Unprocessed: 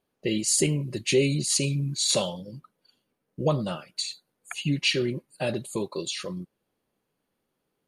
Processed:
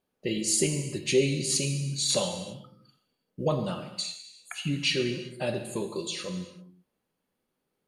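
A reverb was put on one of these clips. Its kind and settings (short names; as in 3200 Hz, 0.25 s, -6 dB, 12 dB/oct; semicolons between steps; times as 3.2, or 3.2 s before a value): non-linear reverb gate 0.41 s falling, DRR 5.5 dB; gain -3 dB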